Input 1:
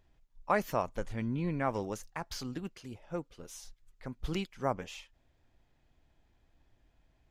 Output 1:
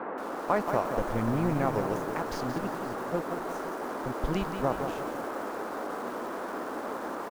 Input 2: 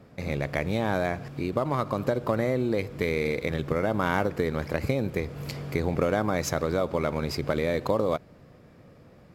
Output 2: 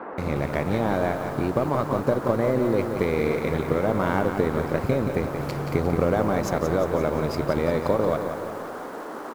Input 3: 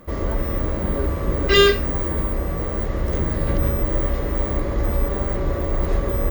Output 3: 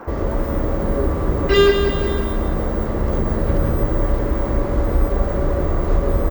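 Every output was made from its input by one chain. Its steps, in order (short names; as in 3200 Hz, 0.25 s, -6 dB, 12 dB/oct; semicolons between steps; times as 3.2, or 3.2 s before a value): low shelf 360 Hz -5 dB; in parallel at +2.5 dB: compressor 10:1, threshold -35 dBFS; on the sum: crossover distortion -41.5 dBFS; band noise 240–1500 Hz -37 dBFS; tilt shelf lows +6 dB, about 1100 Hz; on a send: echo 0.513 s -18 dB; on the sum: lo-fi delay 0.177 s, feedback 55%, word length 7-bit, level -7 dB; gain -1 dB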